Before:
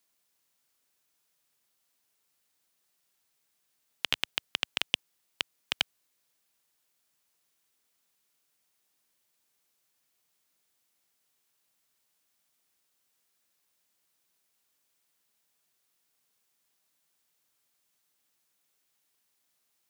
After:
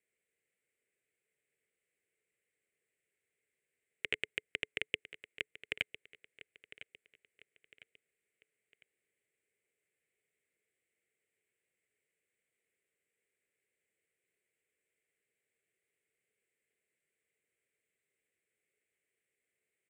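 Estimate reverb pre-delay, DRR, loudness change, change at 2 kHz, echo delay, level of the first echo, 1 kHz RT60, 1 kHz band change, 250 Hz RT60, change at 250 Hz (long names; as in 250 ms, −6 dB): no reverb audible, no reverb audible, −6.5 dB, −2.5 dB, 1,004 ms, −15.5 dB, no reverb audible, −16.0 dB, no reverb audible, −5.0 dB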